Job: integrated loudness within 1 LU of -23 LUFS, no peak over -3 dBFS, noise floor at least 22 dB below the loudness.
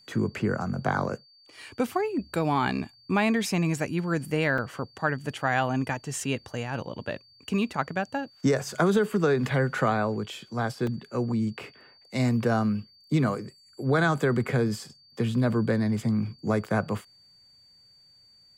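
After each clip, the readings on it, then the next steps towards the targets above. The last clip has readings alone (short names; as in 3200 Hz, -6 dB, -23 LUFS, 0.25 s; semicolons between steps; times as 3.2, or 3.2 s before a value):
dropouts 2; longest dropout 2.8 ms; steady tone 4600 Hz; tone level -55 dBFS; loudness -27.5 LUFS; peak -9.5 dBFS; loudness target -23.0 LUFS
-> interpolate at 4.58/10.87, 2.8 ms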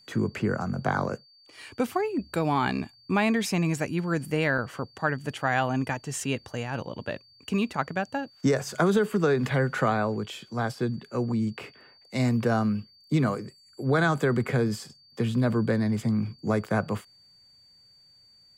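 dropouts 0; steady tone 4600 Hz; tone level -55 dBFS
-> notch 4600 Hz, Q 30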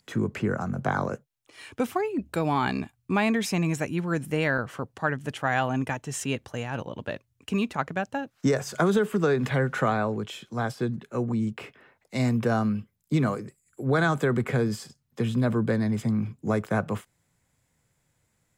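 steady tone none; loudness -27.5 LUFS; peak -9.5 dBFS; loudness target -23.0 LUFS
-> gain +4.5 dB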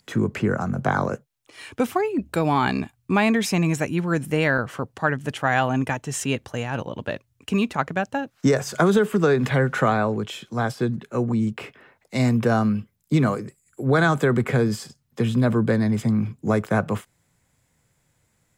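loudness -23.0 LUFS; peak -5.0 dBFS; noise floor -69 dBFS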